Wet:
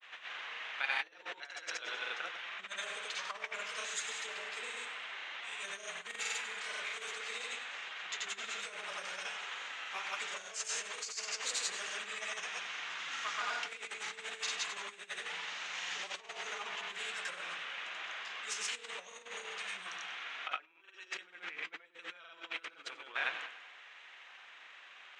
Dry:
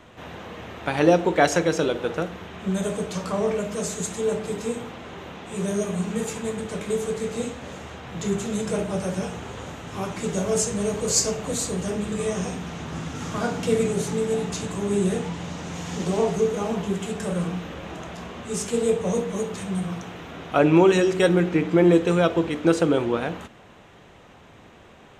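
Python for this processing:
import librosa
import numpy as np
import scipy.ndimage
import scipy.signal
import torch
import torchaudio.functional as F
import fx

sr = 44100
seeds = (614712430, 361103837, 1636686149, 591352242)

y = fx.granulator(x, sr, seeds[0], grain_ms=100.0, per_s=23.0, spray_ms=100.0, spread_st=0)
y = fx.echo_feedback(y, sr, ms=97, feedback_pct=49, wet_db=-12.0)
y = fx.over_compress(y, sr, threshold_db=-28.0, ratio=-0.5)
y = fx.ladder_bandpass(y, sr, hz=2600.0, resonance_pct=20)
y = y * librosa.db_to_amplitude(11.0)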